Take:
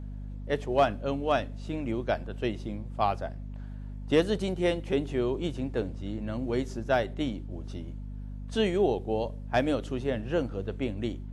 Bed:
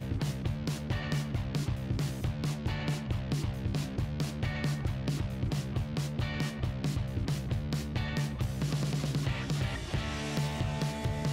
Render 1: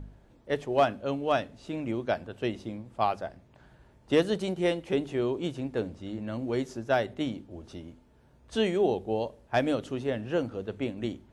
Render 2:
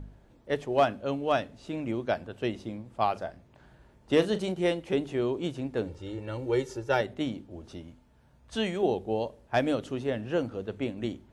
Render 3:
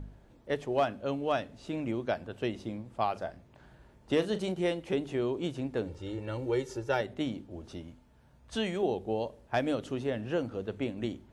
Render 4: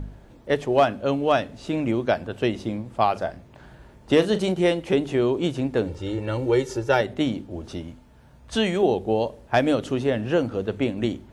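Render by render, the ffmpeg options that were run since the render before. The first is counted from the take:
ffmpeg -i in.wav -af "bandreject=frequency=50:width_type=h:width=4,bandreject=frequency=100:width_type=h:width=4,bandreject=frequency=150:width_type=h:width=4,bandreject=frequency=200:width_type=h:width=4,bandreject=frequency=250:width_type=h:width=4" out.wav
ffmpeg -i in.wav -filter_complex "[0:a]asettb=1/sr,asplit=3[link_01][link_02][link_03];[link_01]atrim=end=3.124[link_04];[link_02]atrim=start=3.12:end=4.52,asetpts=PTS-STARTPTS,afade=type=in:duration=0.004:curve=qsin,afade=type=out:start_time=1.396:duration=0.004:curve=qsin,asplit=2[link_05][link_06];[link_06]adelay=38,volume=-12.5dB[link_07];[link_05][link_07]amix=inputs=2:normalize=0,atrim=end_sample=61740[link_08];[link_03]atrim=start=4.516[link_09];[link_04][link_08]acrossfade=duration=0.004:curve1=hsin:curve2=qsin[link_10];[link_10][link_09]acrossfade=duration=0.004:curve1=qsin:curve2=hsin,asettb=1/sr,asplit=3[link_11][link_12][link_13];[link_11]atrim=end=5.874[link_14];[link_12]atrim=start=5.87:end=7.01,asetpts=PTS-STARTPTS,afade=type=in:duration=0.004:curve=qsin,afade=type=out:start_time=1.136:duration=0.004:curve=qsin,aecho=1:1:2.2:0.79,atrim=end_sample=50274[link_15];[link_13]atrim=start=7.006[link_16];[link_14][link_15]acrossfade=duration=0.004:curve1=hsin:curve2=qsin[link_17];[link_17][link_16]acrossfade=duration=0.004:curve1=qsin:curve2=hsin,asettb=1/sr,asplit=3[link_18][link_19][link_20];[link_18]atrim=end=7.824[link_21];[link_19]atrim=start=7.82:end=8.83,asetpts=PTS-STARTPTS,afade=type=in:duration=0.004:curve=qsin,afade=type=out:start_time=1.006:duration=0.004:curve=qsin,equalizer=frequency=380:width=1.7:gain=-7[link_22];[link_20]atrim=start=8.826[link_23];[link_21][link_22]acrossfade=duration=0.004:curve1=hsin:curve2=qsin[link_24];[link_24][link_23]acrossfade=duration=0.004:curve1=qsin:curve2=hsin" out.wav
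ffmpeg -i in.wav -af "acompressor=threshold=-31dB:ratio=1.5" out.wav
ffmpeg -i in.wav -af "volume=9.5dB" out.wav

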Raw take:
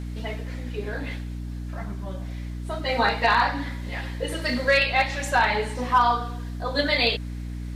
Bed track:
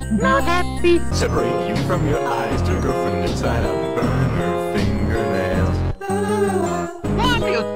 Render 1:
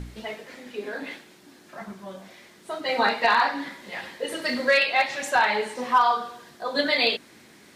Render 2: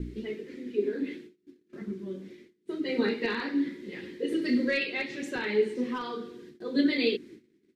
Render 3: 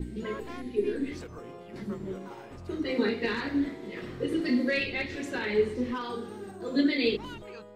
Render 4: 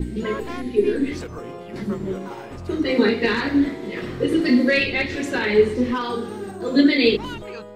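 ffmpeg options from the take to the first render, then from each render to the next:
ffmpeg -i in.wav -af "bandreject=frequency=60:width_type=h:width=4,bandreject=frequency=120:width_type=h:width=4,bandreject=frequency=180:width_type=h:width=4,bandreject=frequency=240:width_type=h:width=4,bandreject=frequency=300:width_type=h:width=4" out.wav
ffmpeg -i in.wav -af "agate=range=-26dB:threshold=-48dB:ratio=16:detection=peak,firequalizer=gain_entry='entry(120,0);entry(370,11);entry(670,-23);entry(2000,-8);entry(9700,-16)':delay=0.05:min_phase=1" out.wav
ffmpeg -i in.wav -i bed.wav -filter_complex "[1:a]volume=-25dB[link_01];[0:a][link_01]amix=inputs=2:normalize=0" out.wav
ffmpeg -i in.wav -af "volume=9.5dB" out.wav

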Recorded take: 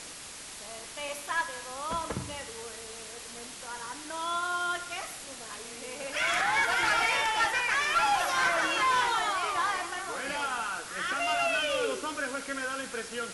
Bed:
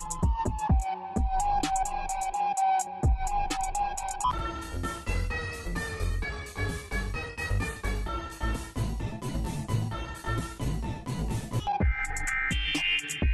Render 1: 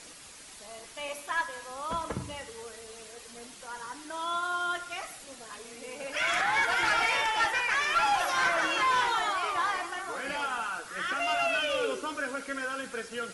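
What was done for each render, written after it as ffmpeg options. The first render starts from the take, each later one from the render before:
ffmpeg -i in.wav -af "afftdn=noise_reduction=7:noise_floor=-44" out.wav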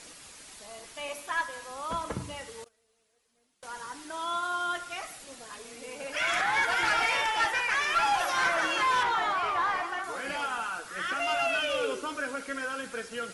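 ffmpeg -i in.wav -filter_complex "[0:a]asettb=1/sr,asplit=3[link_01][link_02][link_03];[link_01]atrim=end=2.644[link_04];[link_02]atrim=start=2.64:end=3.63,asetpts=PTS-STARTPTS,afade=type=in:duration=0.004:curve=qsin,afade=type=out:start_time=0.986:duration=0.004:curve=qsin,agate=range=-26dB:threshold=-40dB:ratio=16:release=100:detection=peak[link_05];[link_03]atrim=start=3.626[link_06];[link_04][link_05]acrossfade=duration=0.004:curve1=hsin:curve2=qsin[link_07];[link_07][link_06]acrossfade=duration=0.004:curve1=qsin:curve2=hsin,asettb=1/sr,asplit=3[link_08][link_09][link_10];[link_08]atrim=end=9.034[link_11];[link_09]atrim=start=9.03:end=10.04,asetpts=PTS-STARTPTS,afade=type=in:duration=0.004:curve=qsin,afade=type=out:start_time=1.006:duration=0.004:curve=qsin,asplit=2[link_12][link_13];[link_13]highpass=frequency=720:poles=1,volume=12dB,asoftclip=type=tanh:threshold=-18.5dB[link_14];[link_12][link_14]amix=inputs=2:normalize=0,lowpass=frequency=1500:poles=1,volume=-6dB[link_15];[link_10]atrim=start=10.036[link_16];[link_11][link_15]acrossfade=duration=0.004:curve1=hsin:curve2=qsin[link_17];[link_17][link_16]acrossfade=duration=0.004:curve1=qsin:curve2=hsin" out.wav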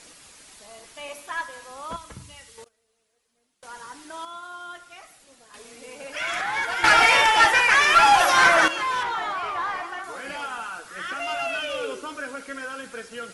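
ffmpeg -i in.wav -filter_complex "[0:a]asettb=1/sr,asplit=3[link_01][link_02][link_03];[link_01]atrim=end=1.964[link_04];[link_02]atrim=start=1.96:end=2.58,asetpts=PTS-STARTPTS,afade=type=in:duration=0.004:curve=qsin,afade=type=out:start_time=0.616:duration=0.004:curve=qsin,equalizer=frequency=470:width=0.34:gain=-12.5[link_05];[link_03]atrim=start=2.576[link_06];[link_04][link_05]acrossfade=duration=0.004:curve1=hsin:curve2=qsin[link_07];[link_07][link_06]acrossfade=duration=0.004:curve1=qsin:curve2=hsin,asplit=5[link_08][link_09][link_10][link_11][link_12];[link_08]atrim=end=4.252[link_13];[link_09]atrim=start=4.248:end=5.542,asetpts=PTS-STARTPTS,volume=-7.5dB[link_14];[link_10]atrim=start=5.538:end=6.842[link_15];[link_11]atrim=start=6.838:end=8.682,asetpts=PTS-STARTPTS,volume=10.5dB[link_16];[link_12]atrim=start=8.678[link_17];[link_13][link_14]acrossfade=duration=0.004:curve1=hsin:curve2=hsin[link_18];[link_18][link_15]acrossfade=duration=0.004:curve1=hsin:curve2=hsin[link_19];[link_19][link_16]acrossfade=duration=0.004:curve1=hsin:curve2=hsin[link_20];[link_20][link_17]acrossfade=duration=0.004:curve1=hsin:curve2=hsin" out.wav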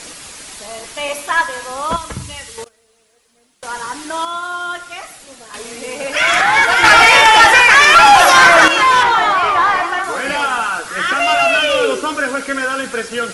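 ffmpeg -i in.wav -af "acontrast=83,alimiter=level_in=8dB:limit=-1dB:release=50:level=0:latency=1" out.wav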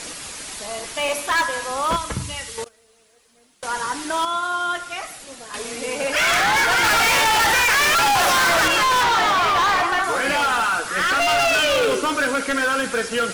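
ffmpeg -i in.wav -af "asoftclip=type=hard:threshold=-16dB" out.wav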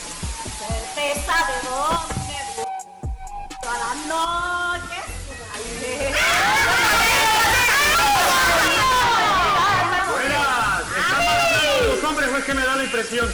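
ffmpeg -i in.wav -i bed.wav -filter_complex "[1:a]volume=-4dB[link_01];[0:a][link_01]amix=inputs=2:normalize=0" out.wav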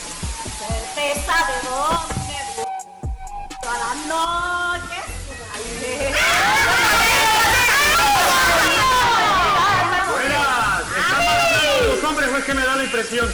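ffmpeg -i in.wav -af "volume=1.5dB" out.wav

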